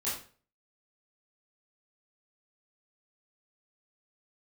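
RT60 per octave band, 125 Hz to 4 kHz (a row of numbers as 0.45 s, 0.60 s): 0.50 s, 0.45 s, 0.45 s, 0.40 s, 0.40 s, 0.35 s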